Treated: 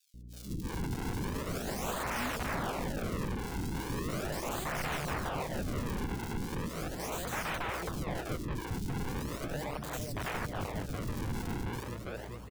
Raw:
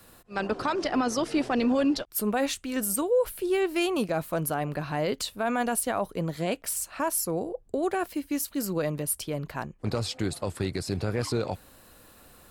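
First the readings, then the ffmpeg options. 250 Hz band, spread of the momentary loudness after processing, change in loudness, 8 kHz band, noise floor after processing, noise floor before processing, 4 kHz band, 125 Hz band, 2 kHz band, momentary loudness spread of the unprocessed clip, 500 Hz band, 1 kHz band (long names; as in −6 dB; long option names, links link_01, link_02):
−9.5 dB, 4 LU, −8.0 dB, −11.0 dB, −44 dBFS, −55 dBFS, −7.0 dB, −2.0 dB, −3.5 dB, 6 LU, −11.5 dB, −6.0 dB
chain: -filter_complex "[0:a]asplit=2[link_01][link_02];[link_02]adelay=413,lowpass=frequency=5000:poles=1,volume=-9dB,asplit=2[link_03][link_04];[link_04]adelay=413,lowpass=frequency=5000:poles=1,volume=0.5,asplit=2[link_05][link_06];[link_06]adelay=413,lowpass=frequency=5000:poles=1,volume=0.5,asplit=2[link_07][link_08];[link_08]adelay=413,lowpass=frequency=5000:poles=1,volume=0.5,asplit=2[link_09][link_10];[link_10]adelay=413,lowpass=frequency=5000:poles=1,volume=0.5,asplit=2[link_11][link_12];[link_12]adelay=413,lowpass=frequency=5000:poles=1,volume=0.5[link_13];[link_03][link_05][link_07][link_09][link_11][link_13]amix=inputs=6:normalize=0[link_14];[link_01][link_14]amix=inputs=2:normalize=0,acrusher=samples=41:mix=1:aa=0.000001:lfo=1:lforange=65.6:lforate=0.38,aeval=exprs='(mod(22.4*val(0)+1,2)-1)/22.4':channel_layout=same,aeval=exprs='val(0)+0.00562*(sin(2*PI*60*n/s)+sin(2*PI*2*60*n/s)/2+sin(2*PI*3*60*n/s)/3+sin(2*PI*4*60*n/s)/4+sin(2*PI*5*60*n/s)/5)':channel_layout=same,acrossover=split=340|3600[link_15][link_16][link_17];[link_15]adelay=140[link_18];[link_16]adelay=330[link_19];[link_18][link_19][link_17]amix=inputs=3:normalize=0,volume=-2dB"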